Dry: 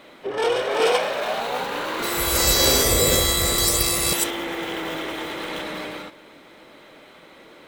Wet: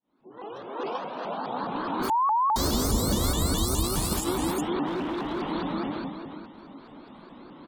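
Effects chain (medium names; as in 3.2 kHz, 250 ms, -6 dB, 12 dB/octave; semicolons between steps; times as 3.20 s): fade-in on the opening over 2.51 s; graphic EQ 125/250/500/1000/2000 Hz -3/+8/-9/+9/-8 dB; delay 372 ms -8 dB; peak limiter -14 dBFS, peak gain reduction 9 dB; 0.82–1.44 s: Chebyshev low-pass 5.8 kHz, order 10; spectral gate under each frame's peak -25 dB strong; bass shelf 490 Hz +11.5 dB; 2.10–2.56 s: bleep 989 Hz -14 dBFS; 4.86–5.42 s: hard clipper -20 dBFS, distortion -23 dB; vibrato with a chosen wave saw up 4.8 Hz, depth 250 cents; trim -6 dB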